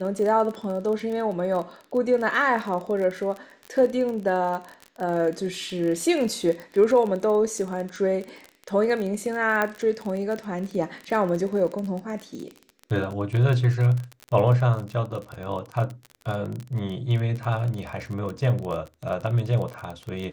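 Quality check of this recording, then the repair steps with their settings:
crackle 30 per s -29 dBFS
9.62 s: pop -11 dBFS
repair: de-click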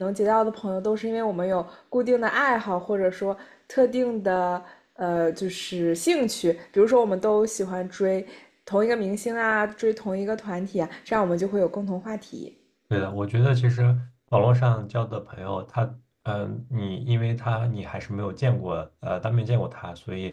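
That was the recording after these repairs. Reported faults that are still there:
nothing left

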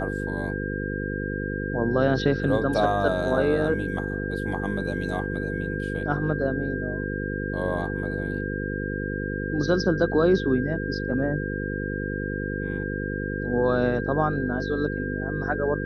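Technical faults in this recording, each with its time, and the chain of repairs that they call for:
buzz 50 Hz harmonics 10 -30 dBFS
whine 1.6 kHz -33 dBFS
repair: band-stop 1.6 kHz, Q 30; de-hum 50 Hz, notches 10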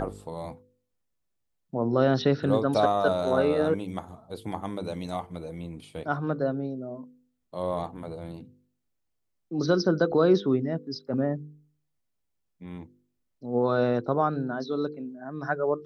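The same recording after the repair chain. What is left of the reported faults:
nothing left

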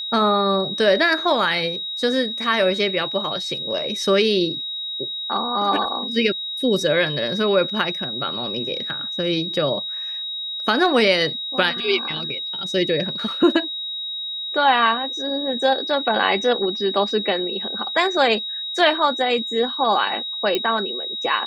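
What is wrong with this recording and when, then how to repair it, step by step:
whine 3.8 kHz -26 dBFS
20.55 s: pop -8 dBFS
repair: de-click; band-stop 3.8 kHz, Q 30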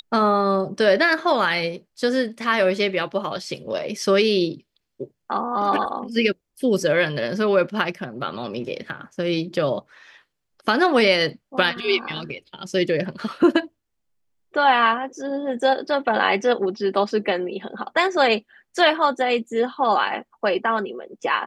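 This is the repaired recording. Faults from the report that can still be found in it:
nothing left

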